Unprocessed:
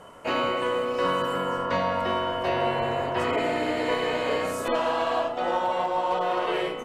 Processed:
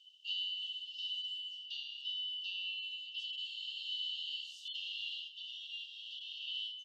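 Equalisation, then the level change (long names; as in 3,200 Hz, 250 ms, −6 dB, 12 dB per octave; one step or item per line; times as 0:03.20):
linear-phase brick-wall high-pass 2,700 Hz
high-frequency loss of the air 200 metres
parametric band 9,800 Hz −9 dB 1.9 octaves
+6.5 dB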